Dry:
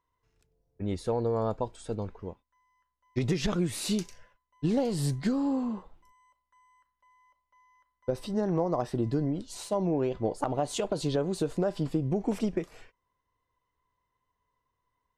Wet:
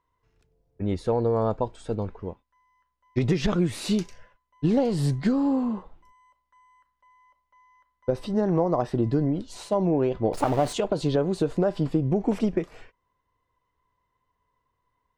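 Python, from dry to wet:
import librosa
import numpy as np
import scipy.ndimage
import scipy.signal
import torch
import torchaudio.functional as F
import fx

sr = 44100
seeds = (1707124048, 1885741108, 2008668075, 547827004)

y = fx.zero_step(x, sr, step_db=-33.5, at=(10.33, 10.73))
y = fx.high_shelf(y, sr, hz=5600.0, db=-11.5)
y = y * librosa.db_to_amplitude(5.0)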